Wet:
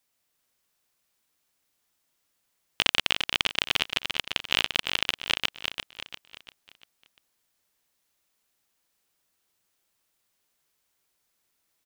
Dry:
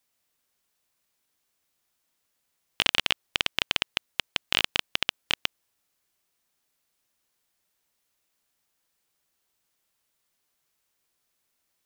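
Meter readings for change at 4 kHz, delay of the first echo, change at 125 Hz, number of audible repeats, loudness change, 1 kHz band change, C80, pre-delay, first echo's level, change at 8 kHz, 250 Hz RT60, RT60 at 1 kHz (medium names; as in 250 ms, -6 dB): +1.0 dB, 345 ms, +1.0 dB, 4, +0.5 dB, +1.0 dB, no reverb, no reverb, -6.0 dB, +1.0 dB, no reverb, no reverb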